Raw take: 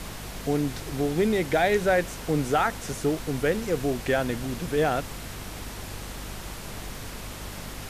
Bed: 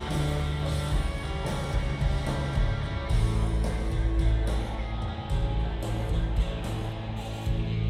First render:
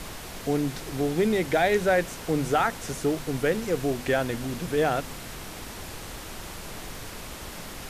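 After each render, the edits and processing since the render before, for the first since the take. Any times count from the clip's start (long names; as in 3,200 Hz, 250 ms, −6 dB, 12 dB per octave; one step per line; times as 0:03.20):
hum removal 50 Hz, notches 5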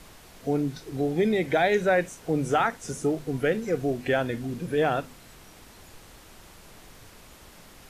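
noise reduction from a noise print 11 dB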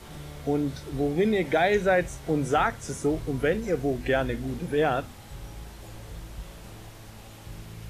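mix in bed −14 dB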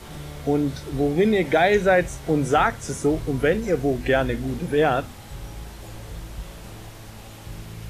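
level +4.5 dB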